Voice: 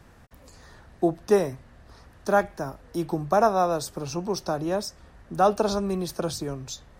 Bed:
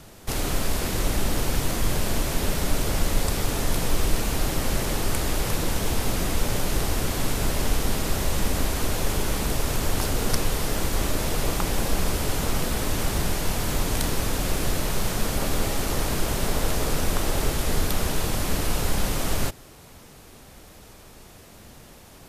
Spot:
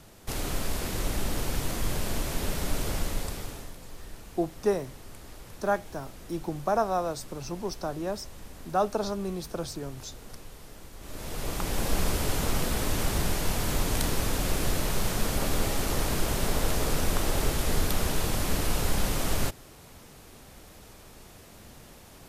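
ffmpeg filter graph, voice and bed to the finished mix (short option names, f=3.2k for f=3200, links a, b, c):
-filter_complex "[0:a]adelay=3350,volume=-5.5dB[a];[1:a]volume=13.5dB,afade=t=out:st=2.9:d=0.85:silence=0.158489,afade=t=in:st=11:d=0.97:silence=0.112202[b];[a][b]amix=inputs=2:normalize=0"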